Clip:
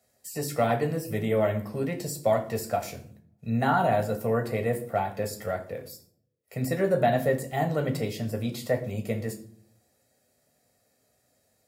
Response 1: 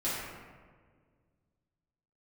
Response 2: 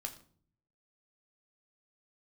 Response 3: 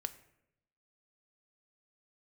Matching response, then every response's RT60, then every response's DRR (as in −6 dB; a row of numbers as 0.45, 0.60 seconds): 2; 1.7, 0.50, 0.80 seconds; −11.0, 4.0, 10.5 decibels